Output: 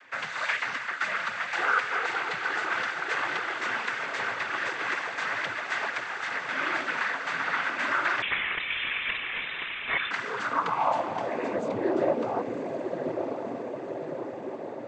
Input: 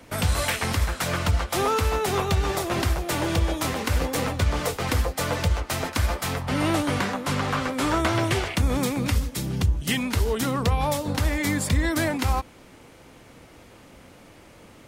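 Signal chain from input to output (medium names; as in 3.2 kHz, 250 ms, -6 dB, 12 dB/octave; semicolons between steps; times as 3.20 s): in parallel at +2 dB: peak limiter -19 dBFS, peak gain reduction 6.5 dB; 5.85–6.33 s: on the sum: compression, threshold -20 dBFS, peak gain reduction 7 dB; on a send: echo that smears into a reverb 1065 ms, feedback 67%, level -5.5 dB; on the sum: noise-vocoded speech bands 16; band-pass sweep 1.7 kHz -> 500 Hz, 10.19–11.77 s; 8.22–10.11 s: frequency inversion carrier 3.8 kHz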